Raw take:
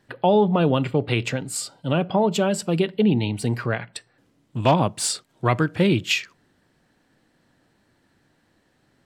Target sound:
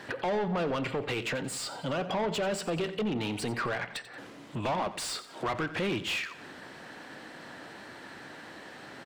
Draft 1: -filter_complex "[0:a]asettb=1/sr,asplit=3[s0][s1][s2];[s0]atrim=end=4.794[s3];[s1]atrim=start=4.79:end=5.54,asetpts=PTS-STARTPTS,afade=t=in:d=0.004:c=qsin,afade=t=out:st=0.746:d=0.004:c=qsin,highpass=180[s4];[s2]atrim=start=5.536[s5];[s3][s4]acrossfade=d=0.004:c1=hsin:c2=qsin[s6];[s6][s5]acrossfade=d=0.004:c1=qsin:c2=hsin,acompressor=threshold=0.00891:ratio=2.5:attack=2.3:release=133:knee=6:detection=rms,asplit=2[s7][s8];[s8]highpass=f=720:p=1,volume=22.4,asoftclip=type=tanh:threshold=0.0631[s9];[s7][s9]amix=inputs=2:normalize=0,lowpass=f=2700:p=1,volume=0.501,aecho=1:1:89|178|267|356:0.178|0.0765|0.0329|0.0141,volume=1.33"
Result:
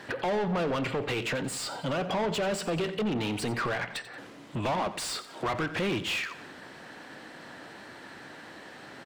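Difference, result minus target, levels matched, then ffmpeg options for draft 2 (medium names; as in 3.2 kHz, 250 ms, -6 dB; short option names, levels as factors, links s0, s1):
compression: peak gain reduction -4 dB
-filter_complex "[0:a]asettb=1/sr,asplit=3[s0][s1][s2];[s0]atrim=end=4.794[s3];[s1]atrim=start=4.79:end=5.54,asetpts=PTS-STARTPTS,afade=t=in:d=0.004:c=qsin,afade=t=out:st=0.746:d=0.004:c=qsin,highpass=180[s4];[s2]atrim=start=5.536[s5];[s3][s4]acrossfade=d=0.004:c1=hsin:c2=qsin[s6];[s6][s5]acrossfade=d=0.004:c1=qsin:c2=hsin,acompressor=threshold=0.00398:ratio=2.5:attack=2.3:release=133:knee=6:detection=rms,asplit=2[s7][s8];[s8]highpass=f=720:p=1,volume=22.4,asoftclip=type=tanh:threshold=0.0631[s9];[s7][s9]amix=inputs=2:normalize=0,lowpass=f=2700:p=1,volume=0.501,aecho=1:1:89|178|267|356:0.178|0.0765|0.0329|0.0141,volume=1.33"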